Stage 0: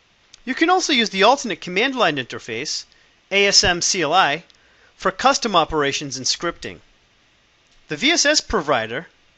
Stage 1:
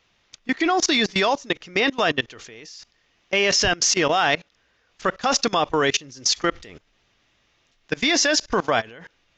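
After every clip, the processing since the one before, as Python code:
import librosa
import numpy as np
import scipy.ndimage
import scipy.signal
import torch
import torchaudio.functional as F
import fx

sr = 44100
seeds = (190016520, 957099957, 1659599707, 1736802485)

y = fx.level_steps(x, sr, step_db=23)
y = F.gain(torch.from_numpy(y), 4.0).numpy()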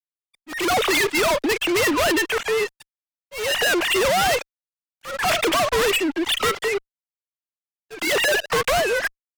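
y = fx.sine_speech(x, sr)
y = fx.fuzz(y, sr, gain_db=46.0, gate_db=-52.0)
y = fx.auto_swell(y, sr, attack_ms=262.0)
y = F.gain(torch.from_numpy(y), -5.0).numpy()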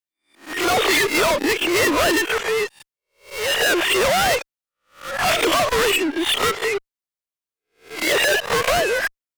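y = fx.spec_swells(x, sr, rise_s=0.33)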